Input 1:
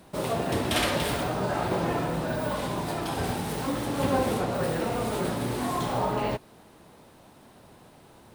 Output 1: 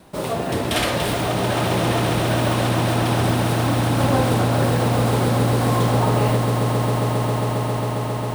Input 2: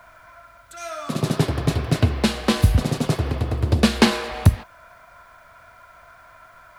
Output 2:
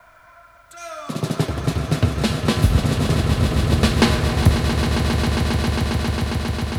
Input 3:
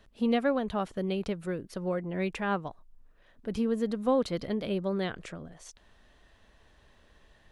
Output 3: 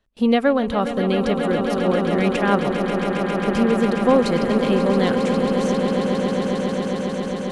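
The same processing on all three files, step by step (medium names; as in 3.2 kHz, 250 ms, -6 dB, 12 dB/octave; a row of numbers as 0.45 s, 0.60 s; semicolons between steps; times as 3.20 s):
gate with hold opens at -49 dBFS; echo with a slow build-up 135 ms, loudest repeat 8, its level -10 dB; normalise loudness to -20 LUFS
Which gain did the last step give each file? +4.0 dB, -1.0 dB, +9.5 dB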